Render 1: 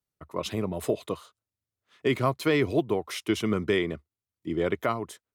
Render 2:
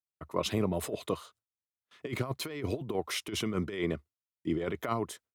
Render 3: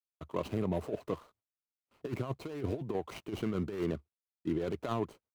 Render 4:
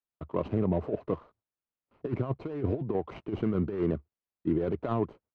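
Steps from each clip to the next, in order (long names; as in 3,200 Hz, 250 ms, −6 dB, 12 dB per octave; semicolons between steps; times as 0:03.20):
noise gate with hold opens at −55 dBFS; compressor whose output falls as the input rises −28 dBFS, ratio −0.5; level −2.5 dB
running median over 25 samples; brickwall limiter −23 dBFS, peak gain reduction 5.5 dB
head-to-tape spacing loss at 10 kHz 39 dB; level +6.5 dB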